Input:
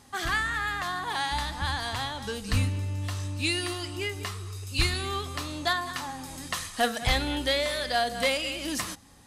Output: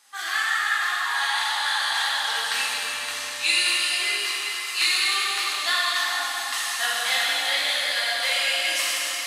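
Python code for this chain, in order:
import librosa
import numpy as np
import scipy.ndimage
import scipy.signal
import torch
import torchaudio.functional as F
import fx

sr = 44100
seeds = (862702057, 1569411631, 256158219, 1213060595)

y = scipy.signal.sosfilt(scipy.signal.butter(2, 1300.0, 'highpass', fs=sr, output='sos'), x)
y = fx.rider(y, sr, range_db=5, speed_s=2.0)
y = fx.rev_plate(y, sr, seeds[0], rt60_s=4.8, hf_ratio=0.85, predelay_ms=0, drr_db=-8.5)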